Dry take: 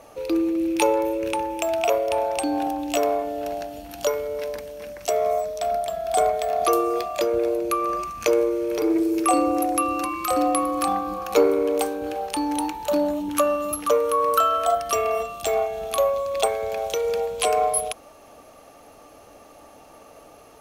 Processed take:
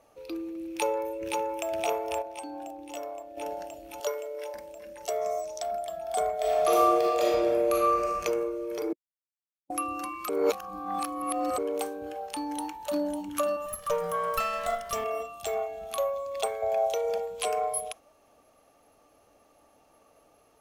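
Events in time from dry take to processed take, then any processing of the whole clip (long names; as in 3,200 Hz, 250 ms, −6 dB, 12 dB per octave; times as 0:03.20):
0:00.69–0:01.66: delay throw 520 ms, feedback 75%, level −4 dB
0:02.22–0:03.37: clip gain −7.5 dB
0:04.00–0:04.54: high-pass filter 350 Hz 24 dB per octave
0:05.21–0:05.63: parametric band 6,100 Hz +10 dB
0:06.35–0:08.19: thrown reverb, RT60 1.8 s, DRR −6 dB
0:08.93–0:09.70: silence
0:10.29–0:11.58: reverse
0:12.31–0:13.01: delay throw 550 ms, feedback 55%, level −7.5 dB
0:13.66–0:15.04: lower of the sound and its delayed copy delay 1.7 ms
0:16.62–0:17.18: parametric band 700 Hz +15 dB 0.43 octaves
whole clip: noise reduction from a noise print of the clip's start 6 dB; level −8 dB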